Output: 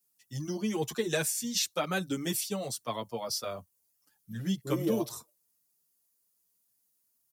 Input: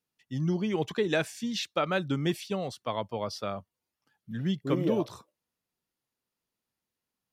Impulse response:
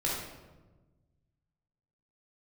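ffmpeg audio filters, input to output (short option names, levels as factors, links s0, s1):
-filter_complex "[0:a]acrossover=split=240|4700[s0][s1][s2];[s2]crystalizer=i=6.5:c=0[s3];[s0][s1][s3]amix=inputs=3:normalize=0,asplit=2[s4][s5];[s5]adelay=7.3,afreqshift=0.47[s6];[s4][s6]amix=inputs=2:normalize=1"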